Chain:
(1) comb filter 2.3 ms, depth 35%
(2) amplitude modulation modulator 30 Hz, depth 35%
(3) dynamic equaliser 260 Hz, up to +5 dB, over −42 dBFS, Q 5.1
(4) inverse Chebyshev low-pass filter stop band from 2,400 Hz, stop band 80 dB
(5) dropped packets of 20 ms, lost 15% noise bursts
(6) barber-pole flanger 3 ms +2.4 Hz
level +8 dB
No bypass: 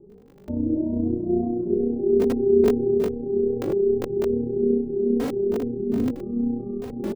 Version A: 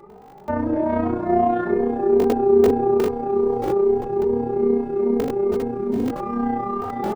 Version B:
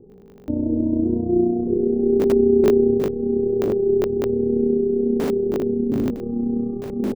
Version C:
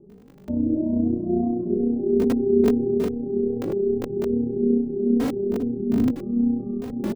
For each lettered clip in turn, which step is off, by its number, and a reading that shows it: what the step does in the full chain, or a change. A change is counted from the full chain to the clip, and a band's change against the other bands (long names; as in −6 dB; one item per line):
4, 1 kHz band +18.0 dB
6, change in momentary loudness spread +2 LU
1, 500 Hz band −3.5 dB